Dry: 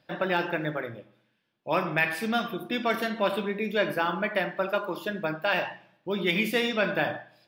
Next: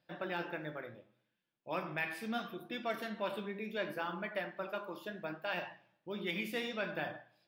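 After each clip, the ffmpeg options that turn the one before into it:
ffmpeg -i in.wav -af "flanger=delay=5.6:depth=9.7:regen=69:speed=0.71:shape=sinusoidal,volume=-7.5dB" out.wav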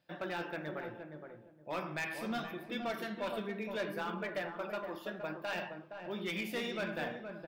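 ffmpeg -i in.wav -filter_complex "[0:a]asoftclip=type=hard:threshold=-32.5dB,asplit=2[link_01][link_02];[link_02]adelay=468,lowpass=frequency=890:poles=1,volume=-5dB,asplit=2[link_03][link_04];[link_04]adelay=468,lowpass=frequency=890:poles=1,volume=0.25,asplit=2[link_05][link_06];[link_06]adelay=468,lowpass=frequency=890:poles=1,volume=0.25[link_07];[link_01][link_03][link_05][link_07]amix=inputs=4:normalize=0,volume=1dB" out.wav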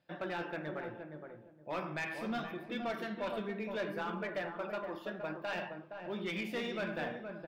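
ffmpeg -i in.wav -filter_complex "[0:a]lowpass=frequency=3600:poles=1,asplit=2[link_01][link_02];[link_02]volume=34.5dB,asoftclip=hard,volume=-34.5dB,volume=-5dB[link_03];[link_01][link_03]amix=inputs=2:normalize=0,volume=-3dB" out.wav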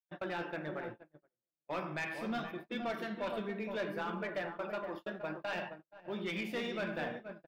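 ffmpeg -i in.wav -af "agate=range=-44dB:threshold=-43dB:ratio=16:detection=peak" out.wav

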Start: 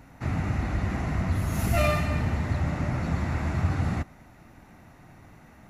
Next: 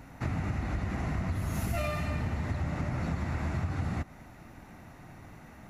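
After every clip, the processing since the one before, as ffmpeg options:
ffmpeg -i in.wav -af "acompressor=threshold=-30dB:ratio=6,volume=1.5dB" out.wav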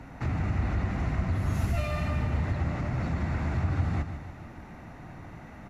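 ffmpeg -i in.wav -filter_complex "[0:a]aemphasis=mode=reproduction:type=50kf,acrossover=split=120|2700[link_01][link_02][link_03];[link_02]alimiter=level_in=9dB:limit=-24dB:level=0:latency=1:release=14,volume=-9dB[link_04];[link_01][link_04][link_03]amix=inputs=3:normalize=0,aecho=1:1:150|300|450|600|750|900:0.316|0.164|0.0855|0.0445|0.0231|0.012,volume=4.5dB" out.wav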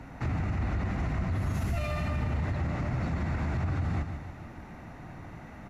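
ffmpeg -i in.wav -af "alimiter=limit=-22.5dB:level=0:latency=1:release=29" out.wav

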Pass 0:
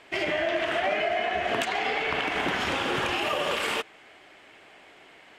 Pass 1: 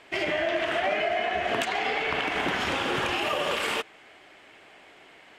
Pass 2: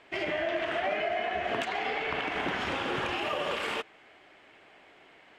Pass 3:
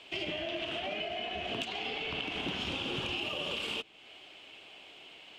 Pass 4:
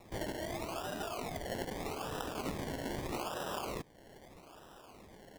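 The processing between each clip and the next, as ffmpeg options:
ffmpeg -i in.wav -af anull out.wav
ffmpeg -i in.wav -af "lowpass=frequency=3800:poles=1,volume=-3.5dB" out.wav
ffmpeg -i in.wav -filter_complex "[0:a]highshelf=frequency=2300:width_type=q:width=3:gain=7,acrossover=split=320[link_01][link_02];[link_02]acompressor=threshold=-42dB:ratio=2[link_03];[link_01][link_03]amix=inputs=2:normalize=0" out.wav
ffmpeg -i in.wav -af "acrusher=samples=28:mix=1:aa=0.000001:lfo=1:lforange=16.8:lforate=0.8,volume=-3dB" out.wav

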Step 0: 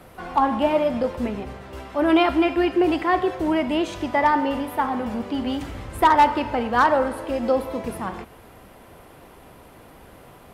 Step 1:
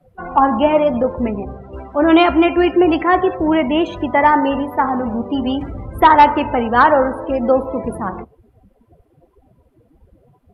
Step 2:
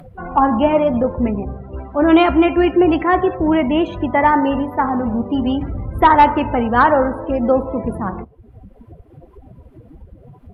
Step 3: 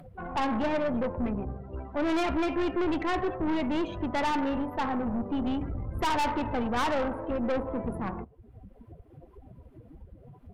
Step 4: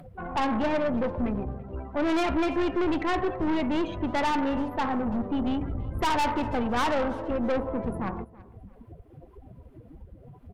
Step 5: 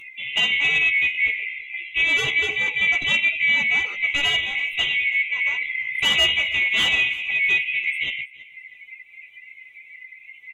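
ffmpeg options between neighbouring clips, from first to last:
ffmpeg -i in.wav -af "afftdn=noise_reduction=29:noise_floor=-35,volume=6.5dB" out.wav
ffmpeg -i in.wav -af "bass=frequency=250:gain=6,treble=frequency=4000:gain=-7,acompressor=mode=upward:threshold=-29dB:ratio=2.5,volume=-1.5dB" out.wav
ffmpeg -i in.wav -af "aeval=exprs='(tanh(7.94*val(0)+0.4)-tanh(0.4))/7.94':channel_layout=same,volume=-7dB" out.wav
ffmpeg -i in.wav -af "aecho=1:1:331|662:0.0841|0.0261,volume=2dB" out.wav
ffmpeg -i in.wav -filter_complex "[0:a]afftfilt=real='real(if(lt(b,920),b+92*(1-2*mod(floor(b/92),2)),b),0)':imag='imag(if(lt(b,920),b+92*(1-2*mod(floor(b/92),2)),b),0)':win_size=2048:overlap=0.75,asplit=2[link_01][link_02];[link_02]adelay=14,volume=-3dB[link_03];[link_01][link_03]amix=inputs=2:normalize=0,volume=3dB" out.wav

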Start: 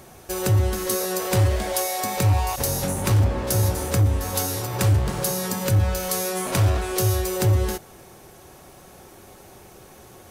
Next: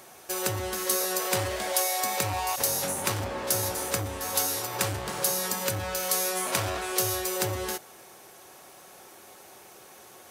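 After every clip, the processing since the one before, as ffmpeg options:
ffmpeg -i in.wav -af "highpass=frequency=700:poles=1" out.wav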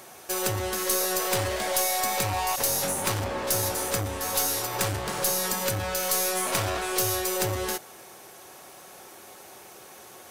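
ffmpeg -i in.wav -af "aeval=exprs='(tanh(11.2*val(0)+0.25)-tanh(0.25))/11.2':channel_layout=same,volume=3.5dB" out.wav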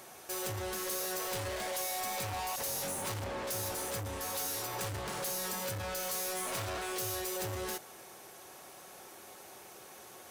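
ffmpeg -i in.wav -af "asoftclip=type=tanh:threshold=-29dB,volume=-4.5dB" out.wav

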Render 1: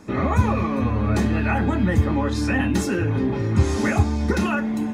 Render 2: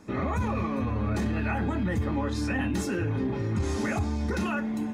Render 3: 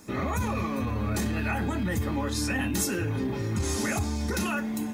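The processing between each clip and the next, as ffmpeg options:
ffmpeg -i in.wav -af "alimiter=limit=-14dB:level=0:latency=1:release=12,volume=-6dB" out.wav
ffmpeg -i in.wav -af "aemphasis=mode=production:type=75fm" out.wav

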